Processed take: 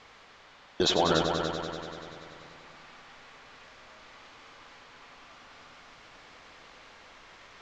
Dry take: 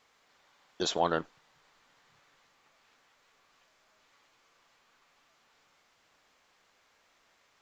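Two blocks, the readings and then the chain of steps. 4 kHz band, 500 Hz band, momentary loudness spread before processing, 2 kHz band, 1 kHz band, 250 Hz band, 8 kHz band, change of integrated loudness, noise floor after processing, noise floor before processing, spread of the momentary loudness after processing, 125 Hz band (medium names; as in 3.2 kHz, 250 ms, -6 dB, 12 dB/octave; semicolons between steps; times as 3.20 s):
+8.5 dB, +6.0 dB, 11 LU, +7.0 dB, +3.5 dB, +8.0 dB, no reading, +3.5 dB, -55 dBFS, -69 dBFS, 21 LU, +9.5 dB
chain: low-pass 4.8 kHz 12 dB/octave; bass shelf 110 Hz +8.5 dB; reverse; upward compressor, threshold -57 dBFS; reverse; peak limiter -23.5 dBFS, peak gain reduction 10.5 dB; in parallel at -12 dB: one-sided clip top -31 dBFS, bottom -26.5 dBFS; on the sum: multi-head delay 96 ms, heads all three, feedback 60%, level -10 dB; trim +8 dB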